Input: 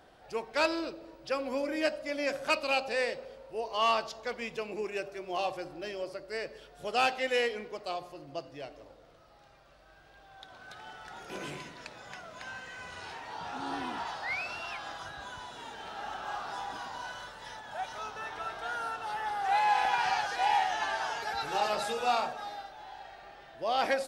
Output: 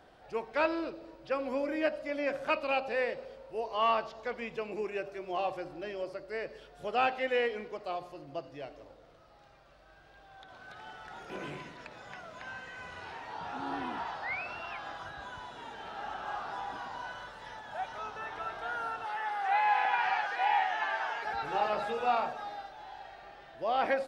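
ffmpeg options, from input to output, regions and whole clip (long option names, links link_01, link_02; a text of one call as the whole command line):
ffmpeg -i in.wav -filter_complex "[0:a]asettb=1/sr,asplit=3[link_01][link_02][link_03];[link_01]atrim=end=19.054[link_04];[link_02]atrim=start=19.05:end=21.25,asetpts=PTS-STARTPTS,afade=type=in:duration=0.004:curve=qsin,afade=type=out:start_time=2.196:duration=0.004:curve=qsin,highpass=frequency=460:poles=1,equalizer=frequency=2100:width_type=o:width=0.85:gain=4[link_05];[link_03]atrim=start=21.246[link_06];[link_04][link_05]acrossfade=duration=0.004:curve1=hsin:curve2=qsin[link_07];[link_07][link_06]acrossfade=duration=0.004:curve1=qsin:curve2=hsin,acrossover=split=3100[link_08][link_09];[link_09]acompressor=threshold=-56dB:ratio=4:attack=1:release=60[link_10];[link_08][link_10]amix=inputs=2:normalize=0,highshelf=frequency=6300:gain=-7" out.wav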